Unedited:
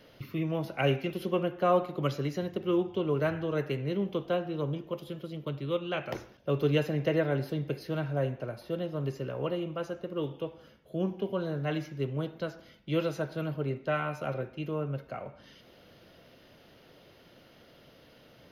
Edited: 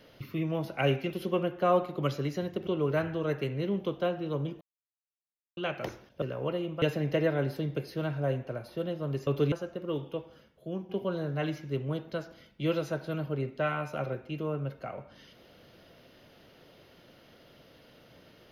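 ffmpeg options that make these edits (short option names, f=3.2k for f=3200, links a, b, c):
-filter_complex "[0:a]asplit=9[a][b][c][d][e][f][g][h][i];[a]atrim=end=2.672[j];[b]atrim=start=2.948:end=4.89,asetpts=PTS-STARTPTS,afade=t=out:st=1.938:d=0.004:c=hsin[k];[c]atrim=start=4.89:end=5.85,asetpts=PTS-STARTPTS,volume=0[l];[d]atrim=start=5.85:end=6.502,asetpts=PTS-STARTPTS,afade=t=in:d=0.004:c=hsin[m];[e]atrim=start=9.198:end=9.802[n];[f]atrim=start=6.748:end=9.202[o];[g]atrim=start=6.498:end=6.752[p];[h]atrim=start=9.798:end=11.17,asetpts=PTS-STARTPTS,afade=t=out:st=0.662:d=0.71:silence=0.421697[q];[i]atrim=start=11.17,asetpts=PTS-STARTPTS,afade=t=in:d=0.004:c=hsin:silence=0.421697[r];[k][l][m]concat=n=3:v=0:a=1[s];[j][s]acrossfade=d=0.004:c1=hsin:c2=hsin[t];[t][n]acrossfade=d=0.004:c1=hsin:c2=hsin[u];[u][o]acrossfade=d=0.004:c1=hsin:c2=hsin[v];[v][p]acrossfade=d=0.004:c1=hsin:c2=hsin[w];[q][r]concat=n=2:v=0:a=1[x];[w][x]acrossfade=d=0.004:c1=hsin:c2=hsin"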